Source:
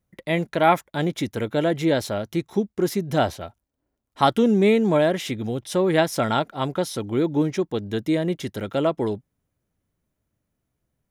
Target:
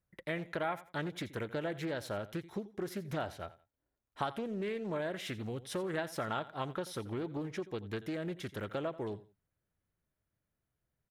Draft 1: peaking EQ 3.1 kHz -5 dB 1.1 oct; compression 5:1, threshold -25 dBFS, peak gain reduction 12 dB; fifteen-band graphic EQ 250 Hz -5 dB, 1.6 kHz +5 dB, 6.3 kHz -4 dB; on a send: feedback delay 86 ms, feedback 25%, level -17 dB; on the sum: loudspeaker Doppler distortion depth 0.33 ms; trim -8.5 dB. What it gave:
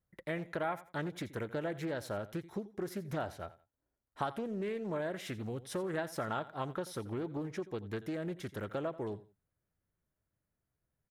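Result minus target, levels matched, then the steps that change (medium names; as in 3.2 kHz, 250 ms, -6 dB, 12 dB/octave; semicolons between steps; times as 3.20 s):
4 kHz band -3.5 dB
remove: peaking EQ 3.1 kHz -5 dB 1.1 oct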